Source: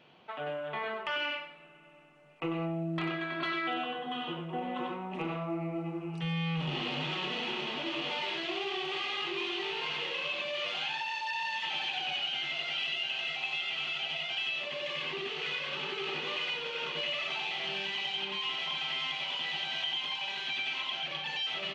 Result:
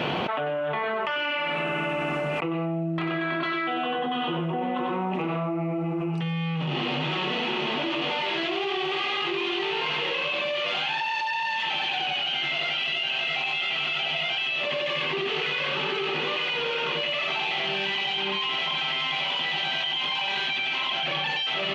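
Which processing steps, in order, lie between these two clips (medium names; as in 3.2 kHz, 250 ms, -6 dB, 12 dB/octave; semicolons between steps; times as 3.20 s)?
high-pass 43 Hz; treble shelf 3.8 kHz -9 dB; level flattener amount 100%; trim +4 dB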